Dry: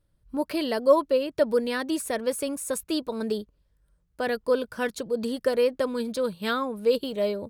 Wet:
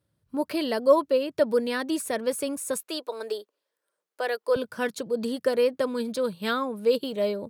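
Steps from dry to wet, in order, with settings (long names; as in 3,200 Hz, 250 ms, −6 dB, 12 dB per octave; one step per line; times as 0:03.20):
high-pass filter 87 Hz 24 dB per octave, from 0:02.80 400 Hz, from 0:04.56 110 Hz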